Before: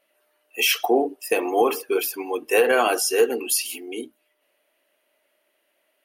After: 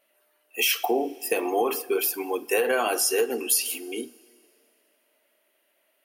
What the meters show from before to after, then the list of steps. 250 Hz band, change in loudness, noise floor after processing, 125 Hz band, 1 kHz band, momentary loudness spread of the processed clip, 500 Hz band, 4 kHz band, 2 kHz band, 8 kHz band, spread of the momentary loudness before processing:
−3.5 dB, −3.0 dB, −70 dBFS, can't be measured, −4.5 dB, 10 LU, −4.5 dB, −2.5 dB, −4.0 dB, 0.0 dB, 12 LU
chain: coupled-rooms reverb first 0.29 s, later 2.5 s, from −18 dB, DRR 13 dB
downward compressor 3 to 1, threshold −20 dBFS, peak gain reduction 6 dB
high-shelf EQ 11,000 Hz +7 dB
level −1 dB

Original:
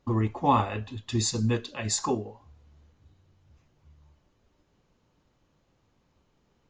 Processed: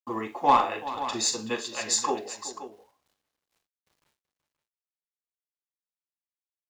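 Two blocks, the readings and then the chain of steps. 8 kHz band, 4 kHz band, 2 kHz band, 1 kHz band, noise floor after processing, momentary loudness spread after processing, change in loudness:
+4.0 dB, +3.5 dB, +3.5 dB, +4.0 dB, below −85 dBFS, 15 LU, +1.0 dB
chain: downward expander −55 dBFS
high-pass filter 440 Hz 12 dB per octave
harmonic generator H 2 −12 dB, 4 −23 dB, 7 −29 dB, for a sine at −11.5 dBFS
in parallel at −3.5 dB: soft clipping −18 dBFS, distortion −14 dB
on the sum: bit reduction 11 bits
on a send: multi-tap delay 41/63/379/528 ms −10/−16/−14.5/−12.5 dB

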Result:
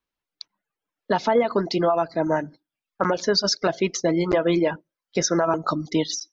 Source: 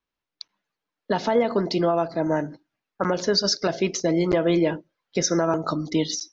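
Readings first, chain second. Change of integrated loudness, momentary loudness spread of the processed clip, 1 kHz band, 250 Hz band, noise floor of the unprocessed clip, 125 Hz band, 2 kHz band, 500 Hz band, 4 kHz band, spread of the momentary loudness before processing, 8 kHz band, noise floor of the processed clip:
+0.5 dB, 6 LU, +3.0 dB, −0.5 dB, below −85 dBFS, −1.0 dB, +2.0 dB, +1.0 dB, 0.0 dB, 7 LU, can't be measured, below −85 dBFS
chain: reverb reduction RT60 0.55 s
dynamic equaliser 1,100 Hz, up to +4 dB, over −37 dBFS, Q 0.75

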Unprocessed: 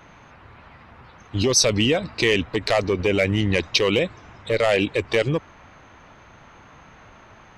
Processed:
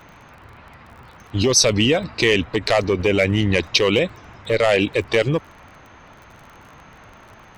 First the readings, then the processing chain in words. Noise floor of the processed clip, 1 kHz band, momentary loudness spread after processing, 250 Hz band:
−46 dBFS, +2.5 dB, 8 LU, +2.5 dB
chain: surface crackle 35 per second −39 dBFS
level +2.5 dB

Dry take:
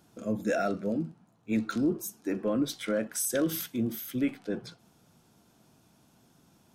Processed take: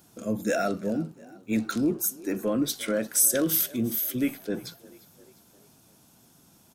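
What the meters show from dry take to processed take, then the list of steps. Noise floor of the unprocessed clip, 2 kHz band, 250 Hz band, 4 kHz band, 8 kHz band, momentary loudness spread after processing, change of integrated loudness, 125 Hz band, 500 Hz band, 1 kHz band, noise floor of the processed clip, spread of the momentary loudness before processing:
−65 dBFS, +3.0 dB, +2.0 dB, +5.5 dB, +10.0 dB, 13 LU, +5.0 dB, +2.0 dB, +2.0 dB, +2.5 dB, −59 dBFS, 9 LU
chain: high-shelf EQ 6,400 Hz +12 dB
on a send: echo with shifted repeats 349 ms, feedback 50%, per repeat +33 Hz, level −21.5 dB
on the sum: level +2 dB

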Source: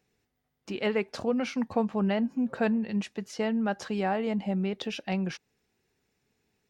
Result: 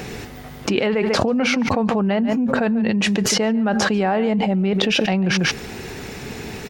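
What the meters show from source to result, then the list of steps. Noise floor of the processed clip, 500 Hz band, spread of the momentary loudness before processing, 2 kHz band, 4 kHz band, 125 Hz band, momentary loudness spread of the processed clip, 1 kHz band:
−36 dBFS, +10.0 dB, 6 LU, +14.0 dB, +17.5 dB, +11.5 dB, 14 LU, +10.5 dB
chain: high-shelf EQ 4,400 Hz −6 dB
on a send: single-tap delay 143 ms −18 dB
on the sum: envelope flattener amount 100%
level +4 dB

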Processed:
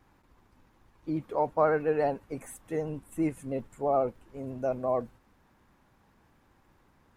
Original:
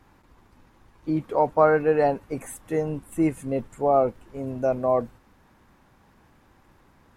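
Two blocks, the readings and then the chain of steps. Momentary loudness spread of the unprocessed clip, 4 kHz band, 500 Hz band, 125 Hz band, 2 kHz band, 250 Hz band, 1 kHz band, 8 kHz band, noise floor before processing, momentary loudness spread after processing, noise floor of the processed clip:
15 LU, can't be measured, −6.5 dB, −6.5 dB, −6.5 dB, −6.5 dB, −6.5 dB, −6.5 dB, −59 dBFS, 15 LU, −66 dBFS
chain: pitch vibrato 14 Hz 46 cents
level −6.5 dB

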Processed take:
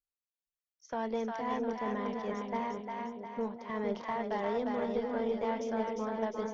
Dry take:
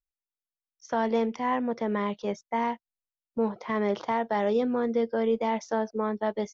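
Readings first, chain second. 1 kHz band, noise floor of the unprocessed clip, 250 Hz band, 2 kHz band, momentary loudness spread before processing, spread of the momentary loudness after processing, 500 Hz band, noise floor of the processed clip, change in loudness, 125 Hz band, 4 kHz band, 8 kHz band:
−6.0 dB, below −85 dBFS, −6.5 dB, −6.5 dB, 5 LU, 5 LU, −6.5 dB, below −85 dBFS, −6.5 dB, −6.5 dB, −6.0 dB, can't be measured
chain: echo with a time of its own for lows and highs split 600 Hz, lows 462 ms, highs 353 ms, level −3 dB
harmonic generator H 4 −23 dB, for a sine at −11.5 dBFS
level −8.5 dB

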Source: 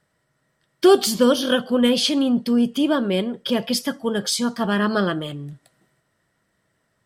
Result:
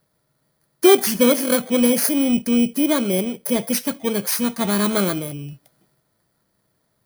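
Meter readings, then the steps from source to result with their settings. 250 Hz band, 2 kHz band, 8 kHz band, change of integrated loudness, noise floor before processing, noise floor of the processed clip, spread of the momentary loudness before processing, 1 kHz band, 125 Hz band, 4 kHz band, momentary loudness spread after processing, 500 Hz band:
+1.0 dB, 0.0 dB, +5.5 dB, +1.5 dB, −71 dBFS, −70 dBFS, 8 LU, −1.0 dB, +1.0 dB, −3.5 dB, 8 LU, +0.5 dB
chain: samples in bit-reversed order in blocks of 16 samples
level +1 dB

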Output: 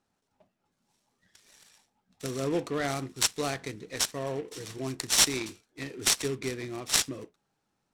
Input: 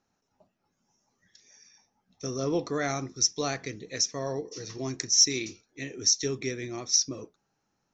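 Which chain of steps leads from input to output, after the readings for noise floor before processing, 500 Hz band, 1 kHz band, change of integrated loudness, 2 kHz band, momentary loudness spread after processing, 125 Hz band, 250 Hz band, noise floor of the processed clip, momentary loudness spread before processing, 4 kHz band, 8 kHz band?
−78 dBFS, −1.0 dB, +1.0 dB, −1.5 dB, +3.0 dB, 16 LU, −1.0 dB, −1.0 dB, −79 dBFS, 17 LU, −1.5 dB, −3.0 dB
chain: short delay modulated by noise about 1,800 Hz, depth 0.035 ms
level −1 dB

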